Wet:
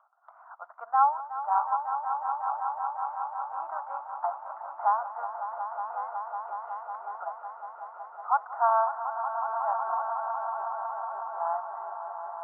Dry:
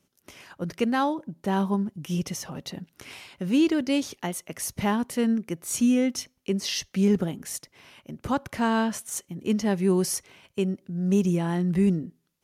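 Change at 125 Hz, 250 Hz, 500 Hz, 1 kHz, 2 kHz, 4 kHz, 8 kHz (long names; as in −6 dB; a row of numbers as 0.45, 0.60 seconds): below −40 dB, below −40 dB, −7.5 dB, +8.0 dB, −8.0 dB, below −40 dB, below −40 dB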